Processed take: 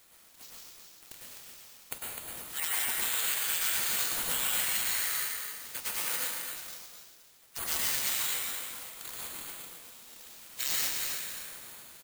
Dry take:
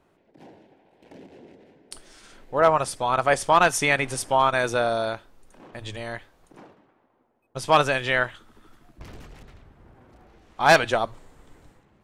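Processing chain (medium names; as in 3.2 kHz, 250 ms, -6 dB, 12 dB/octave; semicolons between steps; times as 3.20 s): high-pass 840 Hz 24 dB/octave; spectral gate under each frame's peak -25 dB weak; tilt EQ +4 dB/octave; compression 10:1, threshold -46 dBFS, peak gain reduction 27 dB; on a send: feedback delay 255 ms, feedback 29%, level -6 dB; on the sum: plate-style reverb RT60 1.9 s, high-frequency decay 0.4×, pre-delay 90 ms, DRR -6.5 dB; careless resampling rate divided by 4×, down none, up zero stuff; trim +8 dB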